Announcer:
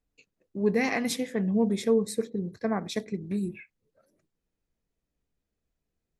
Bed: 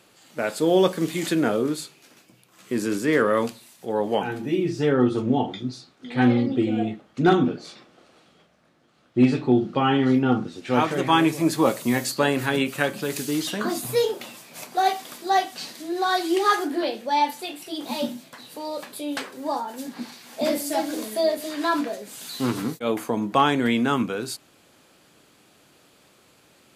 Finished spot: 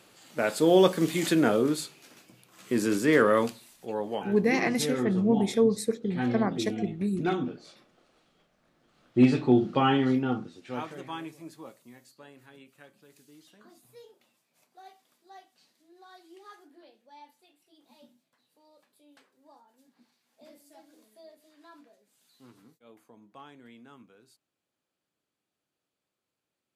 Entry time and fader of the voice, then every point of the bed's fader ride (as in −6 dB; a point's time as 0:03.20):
3.70 s, +1.0 dB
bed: 0:03.30 −1 dB
0:04.27 −10.5 dB
0:08.33 −10.5 dB
0:09.11 −2 dB
0:09.84 −2 dB
0:11.97 −30 dB